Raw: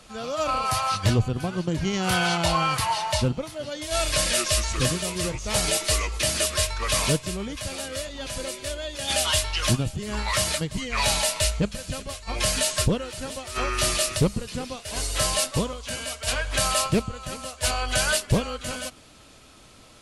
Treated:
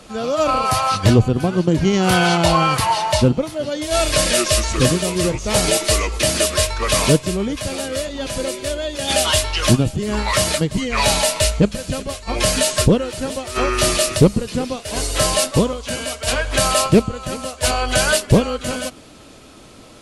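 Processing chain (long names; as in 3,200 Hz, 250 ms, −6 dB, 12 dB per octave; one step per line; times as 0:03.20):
parametric band 330 Hz +7 dB 2.3 octaves
level +5 dB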